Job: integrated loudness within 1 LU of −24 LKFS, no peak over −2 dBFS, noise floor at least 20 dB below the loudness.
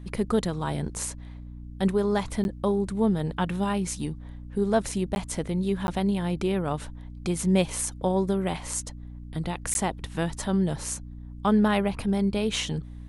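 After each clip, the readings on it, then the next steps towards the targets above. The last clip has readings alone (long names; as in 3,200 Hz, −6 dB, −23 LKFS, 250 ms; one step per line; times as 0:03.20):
number of dropouts 4; longest dropout 11 ms; mains hum 60 Hz; hum harmonics up to 300 Hz; level of the hum −38 dBFS; integrated loudness −27.5 LKFS; sample peak −8.5 dBFS; target loudness −24.0 LKFS
→ repair the gap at 0:02.44/0:05.15/0:05.87/0:09.74, 11 ms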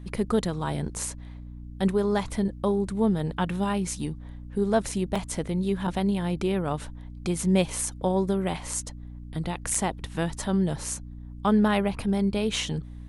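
number of dropouts 0; mains hum 60 Hz; hum harmonics up to 300 Hz; level of the hum −38 dBFS
→ mains-hum notches 60/120/180/240/300 Hz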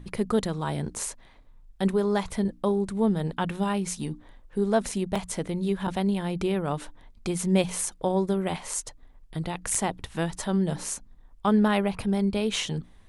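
mains hum none found; integrated loudness −27.5 LKFS; sample peak −9.5 dBFS; target loudness −24.0 LKFS
→ level +3.5 dB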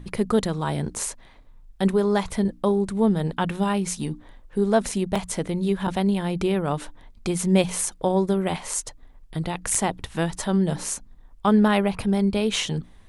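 integrated loudness −24.0 LKFS; sample peak −6.0 dBFS; background noise floor −50 dBFS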